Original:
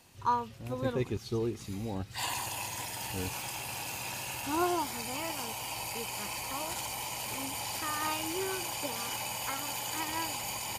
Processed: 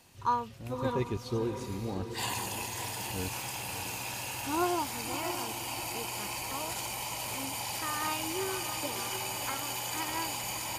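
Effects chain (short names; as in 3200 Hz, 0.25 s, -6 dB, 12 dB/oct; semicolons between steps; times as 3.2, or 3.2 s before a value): diffused feedback echo 0.624 s, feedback 46%, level -9 dB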